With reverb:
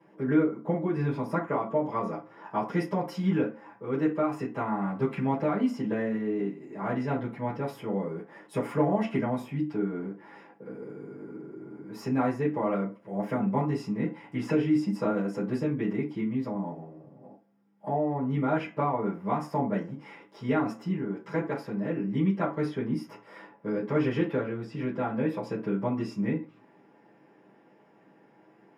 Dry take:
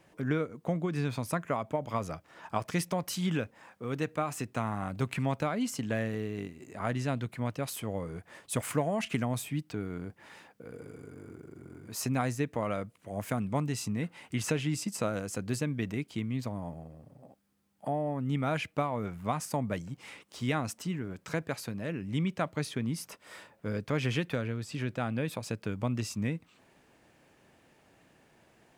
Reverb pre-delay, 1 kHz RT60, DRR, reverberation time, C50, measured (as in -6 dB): 3 ms, 0.35 s, -9.5 dB, 0.40 s, 10.0 dB